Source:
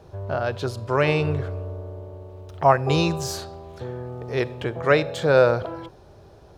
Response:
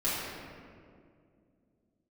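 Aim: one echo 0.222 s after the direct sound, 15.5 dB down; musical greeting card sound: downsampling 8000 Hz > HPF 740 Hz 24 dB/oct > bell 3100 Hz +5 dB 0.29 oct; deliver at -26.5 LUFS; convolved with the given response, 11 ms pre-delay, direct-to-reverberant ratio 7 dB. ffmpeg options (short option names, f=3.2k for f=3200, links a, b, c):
-filter_complex "[0:a]aecho=1:1:222:0.168,asplit=2[a][b];[1:a]atrim=start_sample=2205,adelay=11[c];[b][c]afir=irnorm=-1:irlink=0,volume=-16.5dB[d];[a][d]amix=inputs=2:normalize=0,aresample=8000,aresample=44100,highpass=f=740:w=0.5412,highpass=f=740:w=1.3066,equalizer=f=3.1k:t=o:w=0.29:g=5,volume=0.5dB"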